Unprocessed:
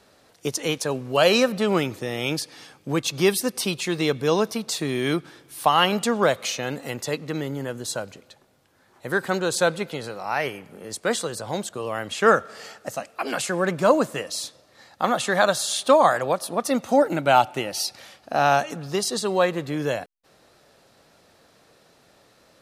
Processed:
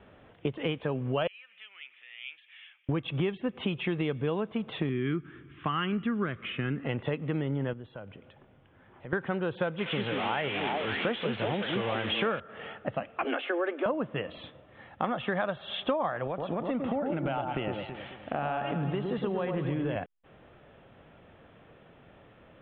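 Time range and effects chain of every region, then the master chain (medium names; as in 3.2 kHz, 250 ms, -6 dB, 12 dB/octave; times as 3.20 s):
1.27–2.89 s: compression 2.5:1, threshold -38 dBFS + Butterworth band-pass 2.6 kHz, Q 1.7
4.89–6.85 s: low-pass 2.3 kHz + high-order bell 680 Hz -15 dB 1.2 oct
7.73–9.13 s: low-pass 8 kHz + compression 2:1, threshold -52 dBFS
9.78–12.40 s: zero-crossing glitches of -10 dBFS + repeats whose band climbs or falls 187 ms, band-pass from 270 Hz, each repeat 1.4 oct, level 0 dB
13.24–13.86 s: steep high-pass 250 Hz 96 dB/octave + band-stop 1 kHz, Q 9.1
16.27–19.96 s: compression 3:1, threshold -28 dBFS + echo whose repeats swap between lows and highs 109 ms, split 1.3 kHz, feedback 62%, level -4.5 dB
whole clip: steep low-pass 3.4 kHz 96 dB/octave; bass shelf 210 Hz +10 dB; compression 6:1, threshold -27 dBFS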